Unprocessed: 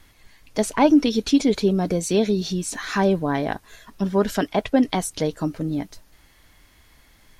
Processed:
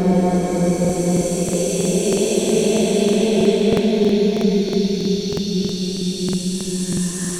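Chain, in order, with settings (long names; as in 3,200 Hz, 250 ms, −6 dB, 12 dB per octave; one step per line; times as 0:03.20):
extreme stretch with random phases 9×, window 0.50 s, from 0:01.84
regular buffer underruns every 0.32 s, samples 2,048, repeat, from 0:00.80
level +4 dB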